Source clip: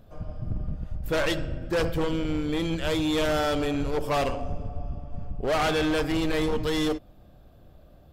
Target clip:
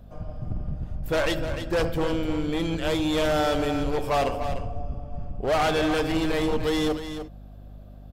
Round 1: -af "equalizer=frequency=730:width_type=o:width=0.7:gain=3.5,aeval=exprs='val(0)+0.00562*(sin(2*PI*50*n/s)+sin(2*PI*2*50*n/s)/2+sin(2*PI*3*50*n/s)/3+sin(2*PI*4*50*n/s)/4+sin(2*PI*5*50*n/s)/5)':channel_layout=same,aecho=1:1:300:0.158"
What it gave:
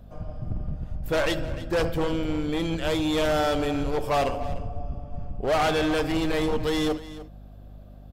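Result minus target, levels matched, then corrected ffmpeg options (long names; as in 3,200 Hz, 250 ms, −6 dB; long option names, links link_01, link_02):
echo-to-direct −6.5 dB
-af "equalizer=frequency=730:width_type=o:width=0.7:gain=3.5,aeval=exprs='val(0)+0.00562*(sin(2*PI*50*n/s)+sin(2*PI*2*50*n/s)/2+sin(2*PI*3*50*n/s)/3+sin(2*PI*4*50*n/s)/4+sin(2*PI*5*50*n/s)/5)':channel_layout=same,aecho=1:1:300:0.335"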